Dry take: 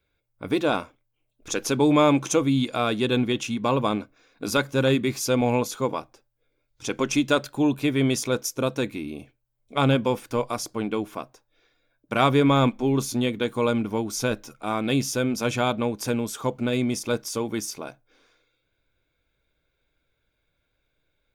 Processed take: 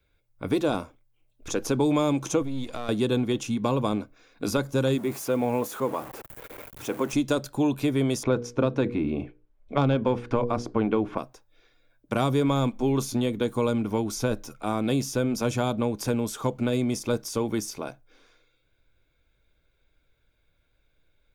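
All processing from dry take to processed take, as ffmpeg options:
-filter_complex "[0:a]asettb=1/sr,asplit=3[a][b][c];[a]atrim=end=2.424[d];[b]atrim=start=2.42:end=2.89,asetpts=PTS-STARTPTS,afade=t=in:d=0.004:c=qsin,afade=t=out:st=0.466:d=0.004:c=qsin,aeval=exprs='if(lt(val(0),0),0.447*val(0),val(0))':c=same,acompressor=threshold=-31dB:ratio=4:attack=3.2:release=140:knee=1:detection=peak[e];[c]atrim=start=2.886[f];[d][e]acrossfade=d=0.004:c1=hsin:c2=qsin[g];[g][f]acrossfade=d=0.004:c1=qsin:c2=hsin,asettb=1/sr,asplit=3[h][i][j];[h]atrim=end=4.984[k];[i]atrim=start=4.98:end=7.13,asetpts=PTS-STARTPTS,afade=t=in:d=0.004:c=qsin,afade=t=out:st=2.146:d=0.004:c=qsin,aeval=exprs='val(0)+0.5*0.0251*sgn(val(0))':c=same,highpass=f=390:p=1,equalizer=f=4.9k:w=0.7:g=-13[l];[j]atrim=start=7.126[m];[k][l]acrossfade=d=0.004:c1=hsin:c2=qsin[n];[n][m]acrossfade=d=0.004:c1=qsin:c2=hsin,asettb=1/sr,asplit=3[o][p][q];[o]atrim=end=8.234[r];[p]atrim=start=8.23:end=11.18,asetpts=PTS-STARTPTS,afade=t=in:d=0.004:c=qsin,afade=t=out:st=2.946:d=0.004:c=qsin,lowpass=2.2k,bandreject=f=60:t=h:w=6,bandreject=f=120:t=h:w=6,bandreject=f=180:t=h:w=6,bandreject=f=240:t=h:w=6,bandreject=f=300:t=h:w=6,bandreject=f=360:t=h:w=6,bandreject=f=420:t=h:w=6,bandreject=f=480:t=h:w=6,acontrast=69[s];[q]atrim=start=11.176[t];[r][s]acrossfade=d=0.004:c1=hsin:c2=qsin[u];[u][t]acrossfade=d=0.004:c1=qsin:c2=hsin,lowshelf=f=67:g=9,acrossover=split=440|1300|4400[v][w][x][y];[v]acompressor=threshold=-25dB:ratio=4[z];[w]acompressor=threshold=-29dB:ratio=4[aa];[x]acompressor=threshold=-45dB:ratio=4[ab];[y]acompressor=threshold=-37dB:ratio=4[ac];[z][aa][ab][ac]amix=inputs=4:normalize=0,volume=1.5dB"

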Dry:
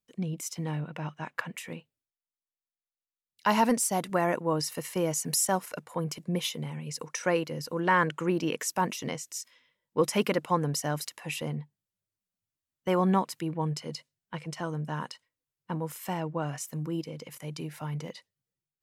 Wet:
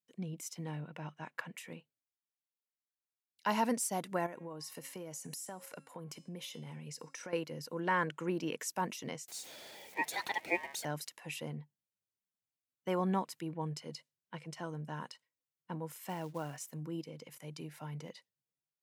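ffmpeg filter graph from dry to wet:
-filter_complex "[0:a]asettb=1/sr,asplit=3[a][b][c];[a]atrim=end=4.264[d];[b]atrim=start=4.26:end=7.33,asetpts=PTS-STARTPTS,afade=t=in:d=0.004:c=qsin,afade=t=out:st=3.066:d=0.004:c=qsin,bandreject=f=271.6:t=h:w=4,bandreject=f=543.2:t=h:w=4,bandreject=f=814.8:t=h:w=4,bandreject=f=1.0864k:t=h:w=4,bandreject=f=1.358k:t=h:w=4,bandreject=f=1.6296k:t=h:w=4,bandreject=f=1.9012k:t=h:w=4,bandreject=f=2.1728k:t=h:w=4,bandreject=f=2.4444k:t=h:w=4,bandreject=f=2.716k:t=h:w=4,bandreject=f=2.9876k:t=h:w=4,bandreject=f=3.2592k:t=h:w=4,bandreject=f=3.5308k:t=h:w=4,bandreject=f=3.8024k:t=h:w=4,bandreject=f=4.074k:t=h:w=4,bandreject=f=4.3456k:t=h:w=4,bandreject=f=4.6172k:t=h:w=4,bandreject=f=4.8888k:t=h:w=4,bandreject=f=5.1604k:t=h:w=4,bandreject=f=5.432k:t=h:w=4,bandreject=f=5.7036k:t=h:w=4,bandreject=f=5.9752k:t=h:w=4,bandreject=f=6.2468k:t=h:w=4,bandreject=f=6.5184k:t=h:w=4,bandreject=f=6.79k:t=h:w=4,bandreject=f=7.0616k:t=h:w=4,bandreject=f=7.3332k:t=h:w=4,bandreject=f=7.6048k:t=h:w=4,bandreject=f=7.8764k:t=h:w=4,bandreject=f=8.148k:t=h:w=4,bandreject=f=8.4196k:t=h:w=4,bandreject=f=8.6912k:t=h:w=4,bandreject=f=8.9628k:t=h:w=4,bandreject=f=9.2344k:t=h:w=4,bandreject=f=9.506k:t=h:w=4,bandreject=f=9.7776k:t=h:w=4,bandreject=f=10.0492k:t=h:w=4,bandreject=f=10.3208k:t=h:w=4,acompressor=threshold=-33dB:ratio=10:attack=3.2:release=140:knee=1:detection=peak[e];[c]atrim=start=7.326[f];[d][e]acrossfade=d=0.004:c1=hsin:c2=qsin[g];[g][f]acrossfade=d=0.004:c1=qsin:c2=hsin,asettb=1/sr,asplit=3[h][i][j];[h]atrim=end=9.284[k];[i]atrim=start=9.28:end=10.85,asetpts=PTS-STARTPTS,afade=t=in:d=0.004:c=qsin,afade=t=out:st=1.566:d=0.004:c=qsin,aeval=exprs='val(0)+0.5*0.0158*sgn(val(0))':c=same,highpass=f=650:t=q:w=2.1,aeval=exprs='val(0)*sin(2*PI*1400*n/s)':c=same[l];[j]atrim=start=10.846[m];[k][l]acrossfade=d=0.004:c1=hsin:c2=qsin[n];[n][m]acrossfade=d=0.004:c1=qsin:c2=hsin,asettb=1/sr,asplit=3[o][p][q];[o]atrim=end=16.094[r];[p]atrim=start=16.09:end=16.74,asetpts=PTS-STARTPTS,afade=t=in:d=0.004:c=qsin,afade=t=out:st=0.646:d=0.004:c=qsin,asubboost=boost=11:cutoff=51,acrusher=bits=5:mode=log:mix=0:aa=0.000001[s];[q]atrim=start=16.736[t];[r][s]acrossfade=d=0.004:c1=hsin:c2=qsin[u];[u][t]acrossfade=d=0.004:c1=qsin:c2=hsin,highpass=120,bandreject=f=1.2k:w=14,volume=-7.5dB"

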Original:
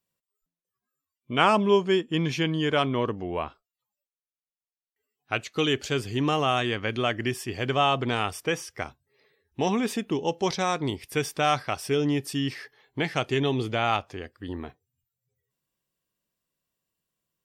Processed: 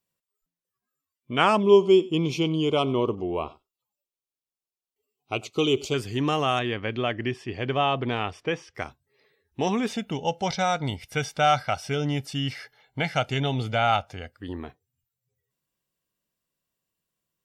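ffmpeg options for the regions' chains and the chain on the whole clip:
-filter_complex "[0:a]asettb=1/sr,asplit=3[a][b][c];[a]atrim=end=1.634[d];[b]atrim=start=1.63:end=5.94,asetpts=PTS-STARTPTS,afade=t=in:d=0.004:c=qsin,afade=t=out:st=4.306:d=0.004:c=qsin,asuperstop=centerf=1700:order=4:qfactor=1.6,equalizer=f=380:t=o:w=0.39:g=6.5,aecho=1:1:95:0.0891,atrim=end_sample=190071[e];[c]atrim=start=5.936[f];[d][e]acrossfade=d=0.004:c1=hsin:c2=qsin[g];[g][f]acrossfade=d=0.004:c1=qsin:c2=hsin,asettb=1/sr,asplit=3[h][i][j];[h]atrim=end=6.594[k];[i]atrim=start=6.59:end=8.75,asetpts=PTS-STARTPTS,afade=t=in:d=0.004:c=qsin,afade=t=out:st=2.156:d=0.004:c=qsin,lowpass=3.4k,equalizer=f=1.4k:t=o:w=0.63:g=-3.5[l];[j]atrim=start=8.746[m];[k][l]acrossfade=d=0.004:c1=hsin:c2=qsin[n];[n][m]acrossfade=d=0.004:c1=qsin:c2=hsin,asettb=1/sr,asplit=3[o][p][q];[o]atrim=end=9.884[r];[p]atrim=start=9.88:end=14.38,asetpts=PTS-STARTPTS,afade=t=in:d=0.004:c=qsin,afade=t=out:st=4.496:d=0.004:c=qsin,acrossover=split=6600[s][t];[t]acompressor=threshold=-54dB:ratio=4:attack=1:release=60[u];[s][u]amix=inputs=2:normalize=0,aecho=1:1:1.4:0.66,atrim=end_sample=198450[v];[q]atrim=start=14.376[w];[r][v]acrossfade=d=0.004:c1=hsin:c2=qsin[x];[x][w]acrossfade=d=0.004:c1=qsin:c2=hsin"

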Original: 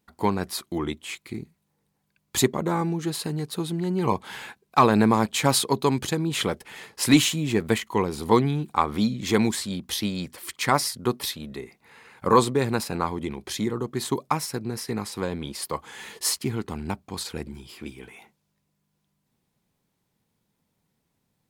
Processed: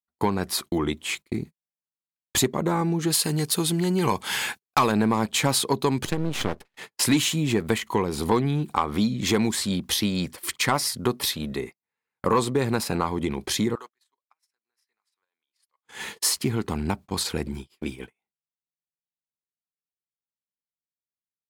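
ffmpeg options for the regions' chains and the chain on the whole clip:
-filter_complex "[0:a]asettb=1/sr,asplit=3[a][b][c];[a]atrim=end=3.104[d];[b]atrim=start=3.1:end=4.92,asetpts=PTS-STARTPTS,afade=t=in:d=0.004:c=qsin,afade=t=out:st=1.816:d=0.004:c=qsin,highshelf=f=2.3k:g=11.5,bandreject=f=3.9k:w=14[e];[c]atrim=start=4.916[f];[d][e]acrossfade=d=0.004:c1=hsin:c2=qsin[g];[g][f]acrossfade=d=0.004:c1=qsin:c2=hsin,asettb=1/sr,asplit=3[h][i][j];[h]atrim=end=6.054[k];[i]atrim=start=6.05:end=6.77,asetpts=PTS-STARTPTS,afade=t=in:d=0.004:c=qsin,afade=t=out:st=0.716:d=0.004:c=qsin,highpass=50,highshelf=f=5.1k:g=-10,aeval=exprs='max(val(0),0)':c=same[l];[j]atrim=start=6.766[m];[k][l]acrossfade=d=0.004:c1=hsin:c2=qsin[n];[n][m]acrossfade=d=0.004:c1=qsin:c2=hsin,asettb=1/sr,asplit=3[o][p][q];[o]atrim=end=13.754[r];[p]atrim=start=13.75:end=15.85,asetpts=PTS-STARTPTS,afade=t=in:d=0.004:c=qsin,afade=t=out:st=2.096:d=0.004:c=qsin,highpass=1.4k,highshelf=f=4.3k:g=-8,acompressor=threshold=-41dB:ratio=16:attack=3.2:release=140:knee=1:detection=peak[s];[q]atrim=start=15.846[t];[r][s]acrossfade=d=0.004:c1=hsin:c2=qsin[u];[u][t]acrossfade=d=0.004:c1=qsin:c2=hsin,acontrast=66,agate=range=-44dB:threshold=-34dB:ratio=16:detection=peak,acompressor=threshold=-22dB:ratio=2.5"

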